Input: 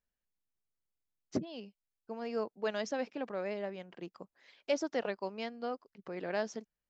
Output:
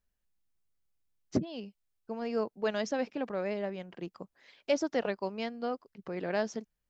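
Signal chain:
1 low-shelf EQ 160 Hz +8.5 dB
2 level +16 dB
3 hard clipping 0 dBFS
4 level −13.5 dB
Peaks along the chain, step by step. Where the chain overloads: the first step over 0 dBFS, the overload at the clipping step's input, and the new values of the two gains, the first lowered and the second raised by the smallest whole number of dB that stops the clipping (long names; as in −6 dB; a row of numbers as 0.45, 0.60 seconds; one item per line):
−17.5, −1.5, −1.5, −15.0 dBFS
no step passes full scale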